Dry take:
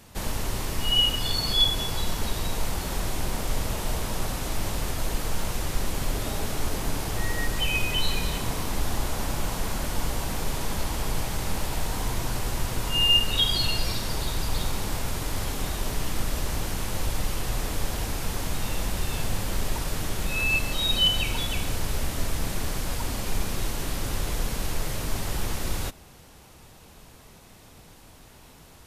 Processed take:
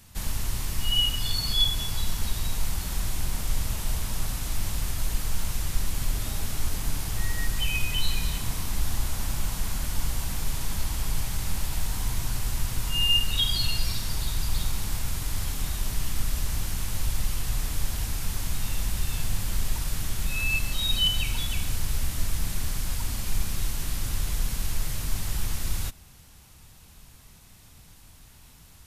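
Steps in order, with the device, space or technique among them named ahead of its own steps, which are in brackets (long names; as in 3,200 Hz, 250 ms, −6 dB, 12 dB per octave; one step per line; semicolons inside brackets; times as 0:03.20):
smiley-face EQ (low-shelf EQ 170 Hz +5.5 dB; parametric band 460 Hz −9 dB 1.9 octaves; high-shelf EQ 5,400 Hz +5.5 dB)
level −3.5 dB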